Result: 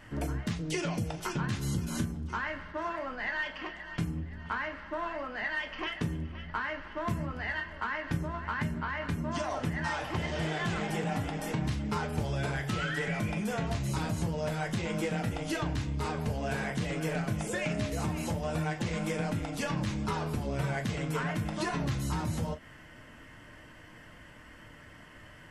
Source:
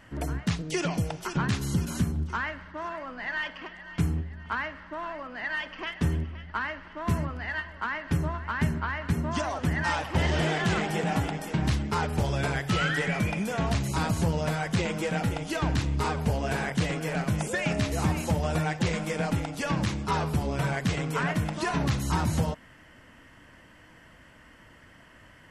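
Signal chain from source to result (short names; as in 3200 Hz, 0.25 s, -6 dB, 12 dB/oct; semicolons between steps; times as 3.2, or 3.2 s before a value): compressor, threshold -31 dBFS, peak gain reduction 11 dB; reverb, pre-delay 5 ms, DRR 4.5 dB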